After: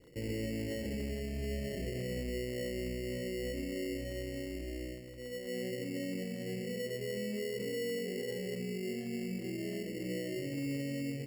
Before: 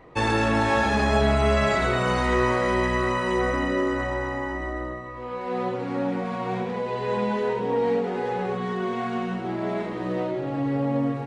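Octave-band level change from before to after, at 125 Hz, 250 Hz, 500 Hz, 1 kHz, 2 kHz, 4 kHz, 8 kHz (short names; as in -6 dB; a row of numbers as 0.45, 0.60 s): -11.5 dB, -11.0 dB, -13.0 dB, -37.0 dB, -18.0 dB, -9.5 dB, n/a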